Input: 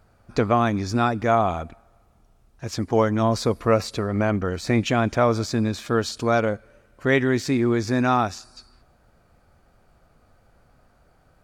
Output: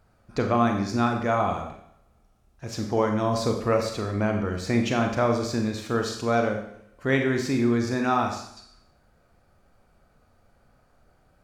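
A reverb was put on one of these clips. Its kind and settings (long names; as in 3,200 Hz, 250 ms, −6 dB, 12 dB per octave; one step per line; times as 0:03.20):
four-comb reverb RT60 0.67 s, combs from 30 ms, DRR 3 dB
level −4.5 dB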